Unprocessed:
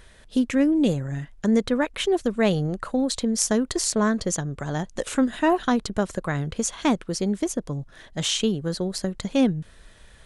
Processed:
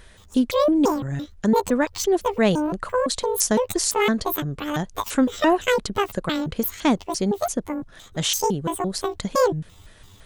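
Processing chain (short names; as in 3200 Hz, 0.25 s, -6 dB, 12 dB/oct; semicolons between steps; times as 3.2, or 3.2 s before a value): trilling pitch shifter +12 st, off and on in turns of 0.17 s; gain +2 dB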